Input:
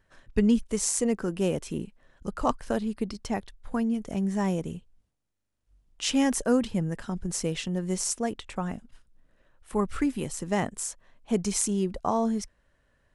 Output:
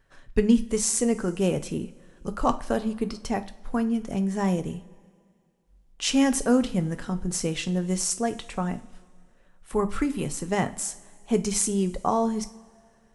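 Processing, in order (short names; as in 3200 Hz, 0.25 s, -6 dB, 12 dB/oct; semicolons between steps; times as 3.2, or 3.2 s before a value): two-slope reverb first 0.33 s, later 2.2 s, from -20 dB, DRR 8.5 dB; gain +2 dB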